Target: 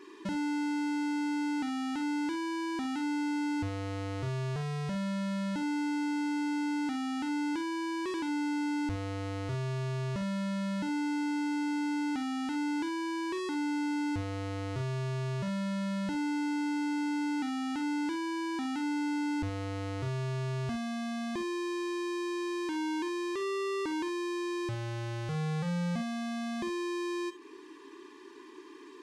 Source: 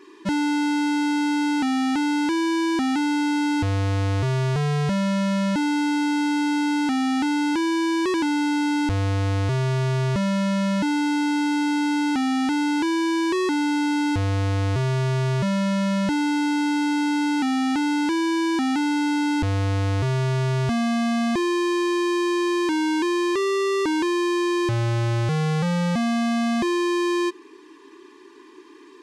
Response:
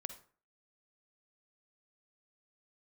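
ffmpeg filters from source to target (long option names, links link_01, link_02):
-filter_complex "[0:a]acompressor=threshold=-32dB:ratio=6[link_01];[1:a]atrim=start_sample=2205,atrim=end_sample=3528[link_02];[link_01][link_02]afir=irnorm=-1:irlink=0"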